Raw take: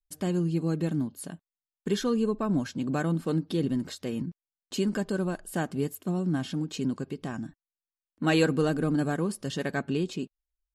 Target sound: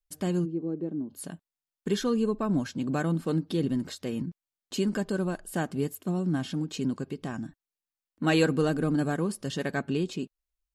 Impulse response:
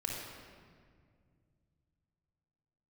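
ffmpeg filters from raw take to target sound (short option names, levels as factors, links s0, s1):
-filter_complex "[0:a]asplit=3[s0][s1][s2];[s0]afade=t=out:st=0.44:d=0.02[s3];[s1]bandpass=f=360:t=q:w=1.8:csg=0,afade=t=in:st=0.44:d=0.02,afade=t=out:st=1.09:d=0.02[s4];[s2]afade=t=in:st=1.09:d=0.02[s5];[s3][s4][s5]amix=inputs=3:normalize=0"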